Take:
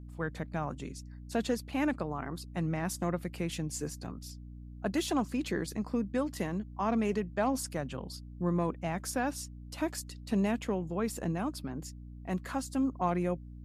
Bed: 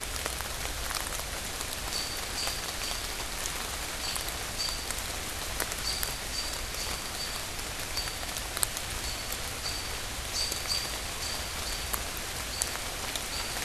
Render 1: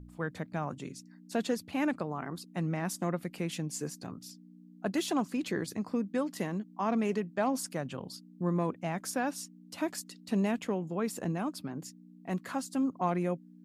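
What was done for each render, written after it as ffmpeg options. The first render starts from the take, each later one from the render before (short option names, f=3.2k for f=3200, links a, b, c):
-af "bandreject=f=60:t=h:w=4,bandreject=f=120:t=h:w=4"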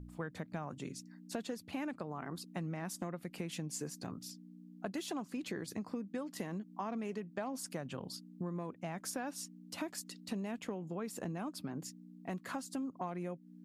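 -af "acompressor=threshold=-37dB:ratio=6"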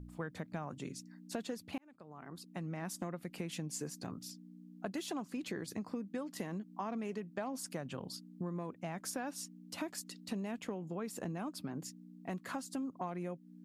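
-filter_complex "[0:a]asplit=2[a][b];[a]atrim=end=1.78,asetpts=PTS-STARTPTS,afade=t=out:st=1.776:d=0.004:c=hsin[c];[b]atrim=start=1.78,asetpts=PTS-STARTPTS,afade=t=in:d=1.05[d];[c][d]concat=n=2:v=0:a=1"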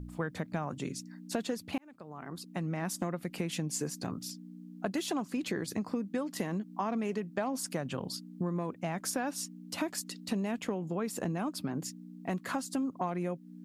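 -af "volume=6.5dB"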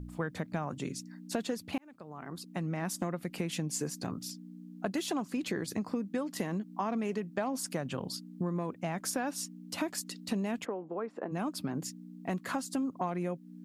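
-filter_complex "[0:a]asplit=3[a][b][c];[a]afade=t=out:st=10.64:d=0.02[d];[b]asuperpass=centerf=710:order=4:qfactor=0.55,afade=t=in:st=10.64:d=0.02,afade=t=out:st=11.31:d=0.02[e];[c]afade=t=in:st=11.31:d=0.02[f];[d][e][f]amix=inputs=3:normalize=0"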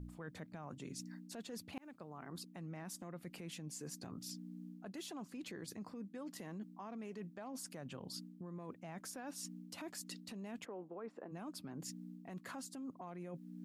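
-af "alimiter=level_in=4dB:limit=-24dB:level=0:latency=1:release=66,volume=-4dB,areverse,acompressor=threshold=-45dB:ratio=6,areverse"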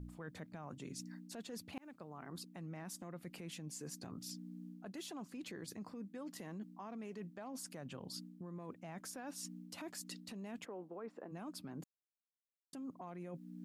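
-filter_complex "[0:a]asplit=3[a][b][c];[a]atrim=end=11.84,asetpts=PTS-STARTPTS,afade=t=out:st=11.836:d=0.004:c=hsin[d];[b]atrim=start=11.84:end=12.73,asetpts=PTS-STARTPTS,volume=0[e];[c]atrim=start=12.73,asetpts=PTS-STARTPTS,afade=t=in:d=0.004:c=hsin[f];[d][e][f]concat=n=3:v=0:a=1"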